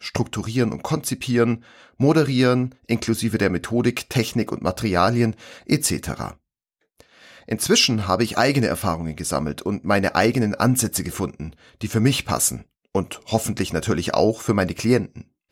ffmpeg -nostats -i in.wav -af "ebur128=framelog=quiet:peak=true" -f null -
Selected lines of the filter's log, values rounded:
Integrated loudness:
  I:         -21.5 LUFS
  Threshold: -32.0 LUFS
Loudness range:
  LRA:         2.6 LU
  Threshold: -41.9 LUFS
  LRA low:   -23.5 LUFS
  LRA high:  -20.8 LUFS
True peak:
  Peak:       -4.1 dBFS